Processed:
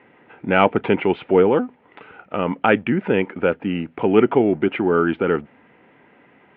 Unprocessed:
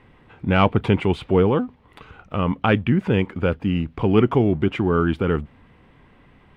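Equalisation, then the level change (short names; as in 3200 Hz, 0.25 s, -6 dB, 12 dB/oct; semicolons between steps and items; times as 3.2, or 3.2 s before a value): HPF 280 Hz 12 dB/oct; LPF 2700 Hz 24 dB/oct; notch 1100 Hz, Q 6; +4.5 dB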